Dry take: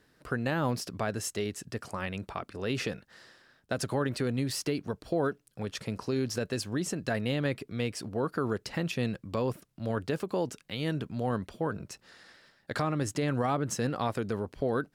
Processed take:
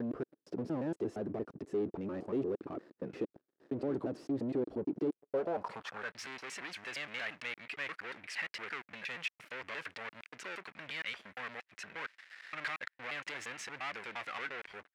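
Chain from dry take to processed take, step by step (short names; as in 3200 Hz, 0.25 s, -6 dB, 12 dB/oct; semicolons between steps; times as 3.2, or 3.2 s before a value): slices in reverse order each 0.116 s, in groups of 4; sample leveller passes 5; expander -42 dBFS; band-pass sweep 340 Hz -> 2100 Hz, 5.07–6.21; gain -7 dB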